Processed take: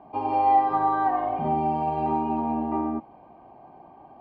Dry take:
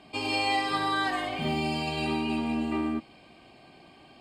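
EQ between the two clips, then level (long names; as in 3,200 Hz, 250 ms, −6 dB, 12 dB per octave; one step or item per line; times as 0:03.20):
low-pass with resonance 880 Hz, resonance Q 4.2
0.0 dB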